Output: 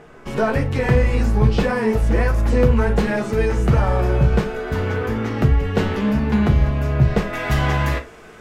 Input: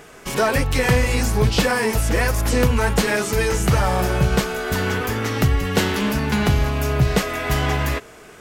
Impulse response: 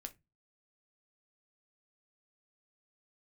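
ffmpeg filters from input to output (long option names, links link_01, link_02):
-filter_complex "[0:a]asetnsamples=nb_out_samples=441:pad=0,asendcmd='7.33 lowpass f 3700',lowpass=frequency=1100:poles=1[link_01];[1:a]atrim=start_sample=2205,atrim=end_sample=3528,asetrate=33075,aresample=44100[link_02];[link_01][link_02]afir=irnorm=-1:irlink=0,volume=4.5dB"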